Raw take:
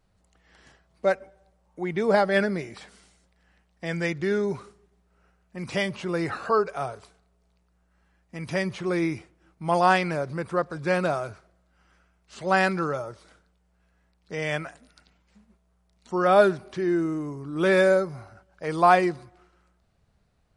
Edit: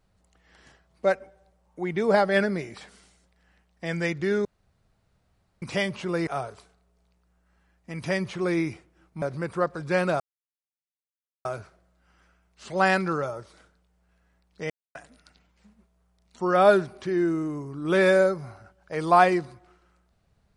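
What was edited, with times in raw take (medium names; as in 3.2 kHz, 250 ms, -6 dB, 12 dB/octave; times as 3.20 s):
4.45–5.62 s: room tone
6.27–6.72 s: delete
9.67–10.18 s: delete
11.16 s: insert silence 1.25 s
14.41–14.66 s: mute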